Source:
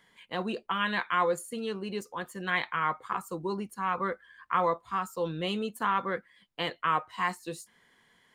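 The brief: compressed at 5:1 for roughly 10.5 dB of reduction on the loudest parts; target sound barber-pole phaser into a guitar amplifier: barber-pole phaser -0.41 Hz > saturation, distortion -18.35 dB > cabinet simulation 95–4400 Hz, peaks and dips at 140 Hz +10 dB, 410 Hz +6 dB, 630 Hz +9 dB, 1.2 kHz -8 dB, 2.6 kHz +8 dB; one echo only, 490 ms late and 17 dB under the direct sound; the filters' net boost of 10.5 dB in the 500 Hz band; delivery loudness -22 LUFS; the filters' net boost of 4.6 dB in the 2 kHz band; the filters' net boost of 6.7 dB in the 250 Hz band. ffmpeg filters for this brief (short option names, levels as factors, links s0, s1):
-filter_complex "[0:a]equalizer=f=250:t=o:g=5.5,equalizer=f=500:t=o:g=5,equalizer=f=2000:t=o:g=4.5,acompressor=threshold=0.0316:ratio=5,aecho=1:1:490:0.141,asplit=2[s0][s1];[s1]afreqshift=-0.41[s2];[s0][s2]amix=inputs=2:normalize=1,asoftclip=threshold=0.0447,highpass=95,equalizer=f=140:t=q:w=4:g=10,equalizer=f=410:t=q:w=4:g=6,equalizer=f=630:t=q:w=4:g=9,equalizer=f=1200:t=q:w=4:g=-8,equalizer=f=2600:t=q:w=4:g=8,lowpass=f=4400:w=0.5412,lowpass=f=4400:w=1.3066,volume=5.62"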